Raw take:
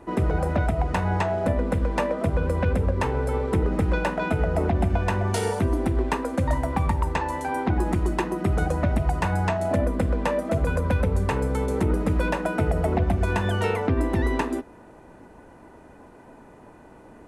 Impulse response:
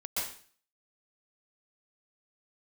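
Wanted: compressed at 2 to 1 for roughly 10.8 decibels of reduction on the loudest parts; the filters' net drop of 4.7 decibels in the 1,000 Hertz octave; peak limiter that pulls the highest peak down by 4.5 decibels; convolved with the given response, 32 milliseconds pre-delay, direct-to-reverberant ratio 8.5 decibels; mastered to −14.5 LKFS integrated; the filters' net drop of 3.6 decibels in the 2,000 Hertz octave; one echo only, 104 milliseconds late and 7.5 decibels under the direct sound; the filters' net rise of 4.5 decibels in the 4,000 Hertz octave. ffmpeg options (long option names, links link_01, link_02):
-filter_complex "[0:a]equalizer=frequency=1000:width_type=o:gain=-5.5,equalizer=frequency=2000:width_type=o:gain=-4.5,equalizer=frequency=4000:width_type=o:gain=8,acompressor=threshold=-39dB:ratio=2,alimiter=level_in=2.5dB:limit=-24dB:level=0:latency=1,volume=-2.5dB,aecho=1:1:104:0.422,asplit=2[link_01][link_02];[1:a]atrim=start_sample=2205,adelay=32[link_03];[link_02][link_03]afir=irnorm=-1:irlink=0,volume=-13dB[link_04];[link_01][link_04]amix=inputs=2:normalize=0,volume=21.5dB"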